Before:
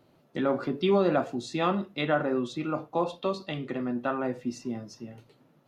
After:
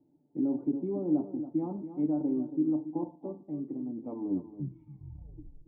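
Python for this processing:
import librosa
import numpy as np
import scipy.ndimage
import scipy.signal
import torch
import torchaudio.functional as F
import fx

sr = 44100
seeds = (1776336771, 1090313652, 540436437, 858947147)

p1 = fx.tape_stop_end(x, sr, length_s=1.8)
p2 = fx.peak_eq(p1, sr, hz=2000.0, db=-7.0, octaves=2.6)
p3 = p2 + 0.44 * np.pad(p2, (int(6.8 * sr / 1000.0), 0))[:len(p2)]
p4 = fx.level_steps(p3, sr, step_db=10)
p5 = p3 + (p4 * librosa.db_to_amplitude(1.5))
p6 = fx.formant_cascade(p5, sr, vowel='u')
p7 = fx.comb_fb(p6, sr, f0_hz=77.0, decay_s=0.81, harmonics='all', damping=0.0, mix_pct=40)
p8 = p7 + fx.echo_single(p7, sr, ms=279, db=-11.5, dry=0)
y = p8 * librosa.db_to_amplitude(2.5)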